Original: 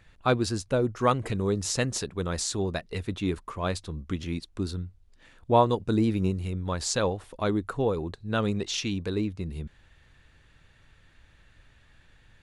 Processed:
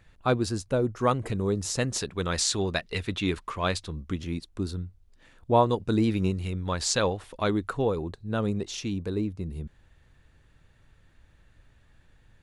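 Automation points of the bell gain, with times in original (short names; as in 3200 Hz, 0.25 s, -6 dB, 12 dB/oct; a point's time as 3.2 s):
bell 2900 Hz 2.7 oct
1.75 s -3 dB
2.25 s +7.5 dB
3.63 s +7.5 dB
4.23 s -2.5 dB
5.57 s -2.5 dB
6.08 s +4 dB
7.69 s +4 dB
8.34 s -7 dB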